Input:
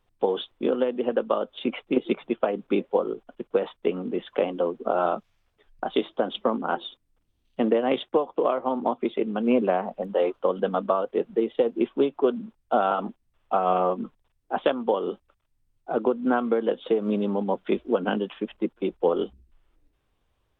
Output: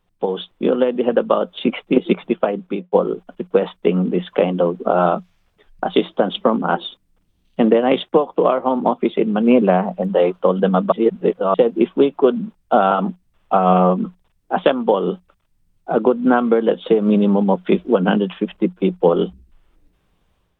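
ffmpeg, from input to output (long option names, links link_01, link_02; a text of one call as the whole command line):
ffmpeg -i in.wav -filter_complex "[0:a]asplit=4[link_01][link_02][link_03][link_04];[link_01]atrim=end=2.92,asetpts=PTS-STARTPTS,afade=type=out:start_time=2.18:duration=0.74:curve=qsin[link_05];[link_02]atrim=start=2.92:end=10.922,asetpts=PTS-STARTPTS,afade=type=in:duration=0.004:curve=hsin[link_06];[link_03]atrim=start=10.918:end=11.542,asetpts=PTS-STARTPTS,areverse[link_07];[link_04]atrim=start=11.538[link_08];[link_05][link_06]concat=n=2:v=0:a=1[link_09];[link_09][link_07]acrossfade=duration=0.004:curve1=hsin:curve2=hsin[link_10];[link_10][link_08]acrossfade=duration=0.004:curve1=hsin:curve2=hsin,equalizer=frequency=180:width=6.1:gain=12.5,dynaudnorm=framelen=370:gausssize=3:maxgain=6.5dB,volume=2dB" out.wav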